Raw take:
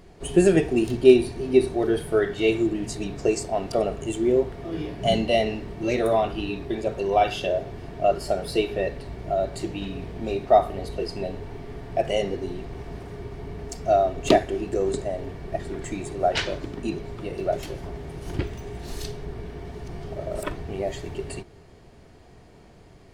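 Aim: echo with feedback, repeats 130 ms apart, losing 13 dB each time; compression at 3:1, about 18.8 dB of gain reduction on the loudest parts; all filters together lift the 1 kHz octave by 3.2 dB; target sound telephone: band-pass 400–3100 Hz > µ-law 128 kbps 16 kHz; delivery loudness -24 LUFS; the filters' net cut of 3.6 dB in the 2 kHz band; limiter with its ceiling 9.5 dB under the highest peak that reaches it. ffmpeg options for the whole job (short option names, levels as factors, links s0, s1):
-af "equalizer=f=1000:t=o:g=7.5,equalizer=f=2000:t=o:g=-5.5,acompressor=threshold=0.0178:ratio=3,alimiter=level_in=1.41:limit=0.0631:level=0:latency=1,volume=0.708,highpass=400,lowpass=3100,aecho=1:1:130|260|390:0.224|0.0493|0.0108,volume=7.08" -ar 16000 -c:a pcm_mulaw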